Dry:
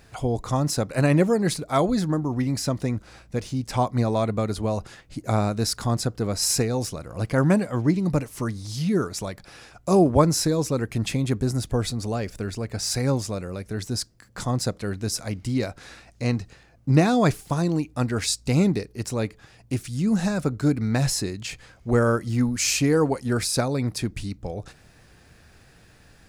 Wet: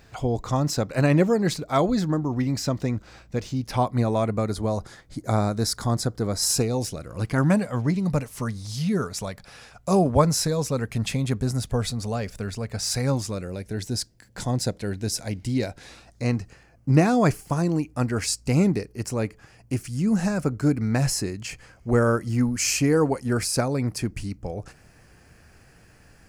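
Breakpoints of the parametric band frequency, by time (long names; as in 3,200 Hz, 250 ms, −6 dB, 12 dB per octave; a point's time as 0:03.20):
parametric band −12.5 dB 0.26 octaves
0:03.50 9,900 Hz
0:04.56 2,700 Hz
0:06.40 2,700 Hz
0:07.61 330 Hz
0:13.08 330 Hz
0:13.51 1,200 Hz
0:15.81 1,200 Hz
0:16.30 3,700 Hz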